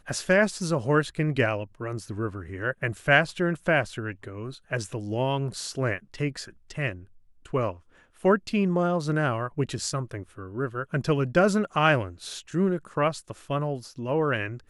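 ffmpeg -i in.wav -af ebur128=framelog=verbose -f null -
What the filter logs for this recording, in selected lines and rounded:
Integrated loudness:
  I:         -26.7 LUFS
  Threshold: -37.1 LUFS
Loudness range:
  LRA:         5.1 LU
  Threshold: -47.3 LUFS
  LRA low:   -30.9 LUFS
  LRA high:  -25.9 LUFS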